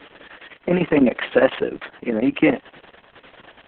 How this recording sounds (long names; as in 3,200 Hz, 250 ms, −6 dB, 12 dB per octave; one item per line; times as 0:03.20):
chopped level 9.9 Hz, depth 65%, duty 80%
Opus